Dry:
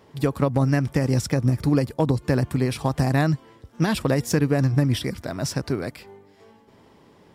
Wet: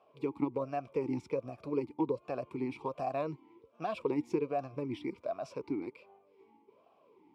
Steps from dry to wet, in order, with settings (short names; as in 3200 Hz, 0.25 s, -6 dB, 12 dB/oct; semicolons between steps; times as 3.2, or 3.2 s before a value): vowel sweep a-u 1.3 Hz